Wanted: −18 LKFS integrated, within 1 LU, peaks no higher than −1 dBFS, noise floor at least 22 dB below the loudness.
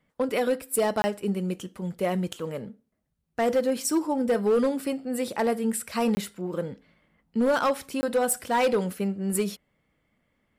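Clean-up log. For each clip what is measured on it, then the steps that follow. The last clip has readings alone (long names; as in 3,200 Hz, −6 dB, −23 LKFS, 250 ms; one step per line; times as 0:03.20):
share of clipped samples 1.2%; peaks flattened at −17.5 dBFS; number of dropouts 3; longest dropout 20 ms; integrated loudness −27.0 LKFS; sample peak −17.5 dBFS; target loudness −18.0 LKFS
→ clipped peaks rebuilt −17.5 dBFS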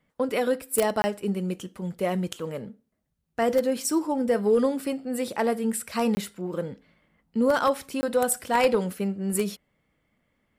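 share of clipped samples 0.0%; number of dropouts 3; longest dropout 20 ms
→ repair the gap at 0:01.02/0:06.15/0:08.01, 20 ms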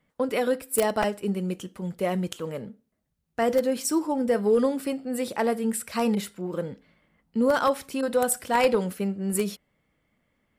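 number of dropouts 0; integrated loudness −26.5 LKFS; sample peak −8.5 dBFS; target loudness −18.0 LKFS
→ level +8.5 dB
brickwall limiter −1 dBFS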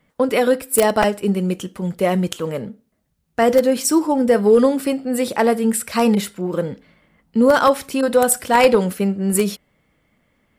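integrated loudness −18.0 LKFS; sample peak −1.0 dBFS; background noise floor −67 dBFS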